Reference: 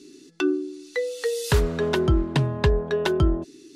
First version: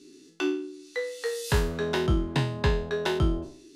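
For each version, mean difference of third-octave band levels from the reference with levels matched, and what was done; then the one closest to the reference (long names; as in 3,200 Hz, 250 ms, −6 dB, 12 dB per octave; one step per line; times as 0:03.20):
3.0 dB: peak hold with a decay on every bin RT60 0.46 s
level −5.5 dB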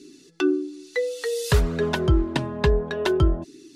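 1.0 dB: flanger 0.56 Hz, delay 0.4 ms, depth 4.5 ms, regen −38%
level +4 dB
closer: second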